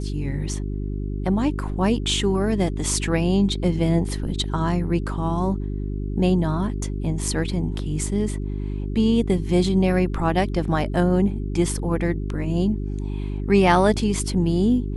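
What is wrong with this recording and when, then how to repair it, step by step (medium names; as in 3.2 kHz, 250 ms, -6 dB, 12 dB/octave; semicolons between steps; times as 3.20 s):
hum 50 Hz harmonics 8 -27 dBFS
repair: de-hum 50 Hz, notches 8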